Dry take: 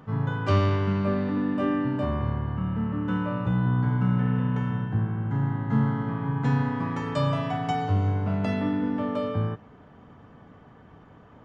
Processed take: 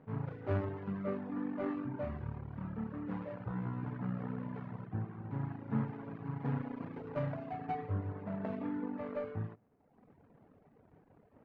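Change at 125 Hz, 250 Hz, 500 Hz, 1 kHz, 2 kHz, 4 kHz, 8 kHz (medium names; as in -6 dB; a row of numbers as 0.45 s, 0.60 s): -14.5 dB, -12.5 dB, -10.0 dB, -13.5 dB, -15.0 dB, under -20 dB, no reading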